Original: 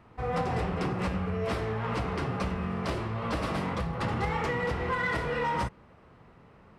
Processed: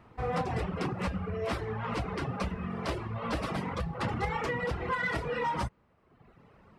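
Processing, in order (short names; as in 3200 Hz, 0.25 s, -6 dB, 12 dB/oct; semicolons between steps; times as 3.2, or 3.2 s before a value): reverb removal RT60 1.1 s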